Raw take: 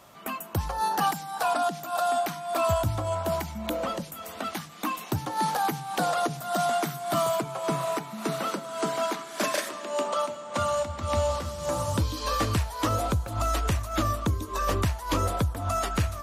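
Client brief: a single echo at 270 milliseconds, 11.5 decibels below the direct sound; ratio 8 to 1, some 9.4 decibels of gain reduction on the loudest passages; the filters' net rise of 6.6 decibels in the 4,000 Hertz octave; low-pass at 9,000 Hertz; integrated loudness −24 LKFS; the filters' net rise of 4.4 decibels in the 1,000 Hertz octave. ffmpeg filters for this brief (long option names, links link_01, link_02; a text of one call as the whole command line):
ffmpeg -i in.wav -af "lowpass=9000,equalizer=frequency=1000:width_type=o:gain=5.5,equalizer=frequency=4000:width_type=o:gain=8,acompressor=threshold=-28dB:ratio=8,aecho=1:1:270:0.266,volume=7.5dB" out.wav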